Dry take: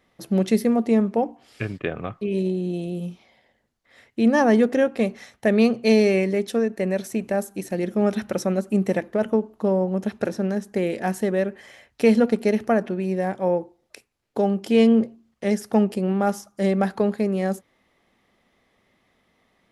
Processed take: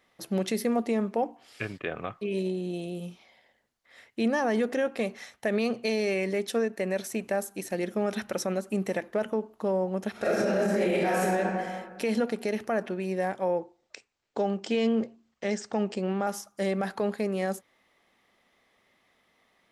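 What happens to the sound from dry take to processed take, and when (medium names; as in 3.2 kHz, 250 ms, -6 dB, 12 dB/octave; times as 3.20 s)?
10.11–11.20 s: reverb throw, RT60 1.8 s, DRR -11 dB
13.59–16.27 s: steep low-pass 8.2 kHz 96 dB/octave
whole clip: bass shelf 370 Hz -10 dB; peak limiter -18 dBFS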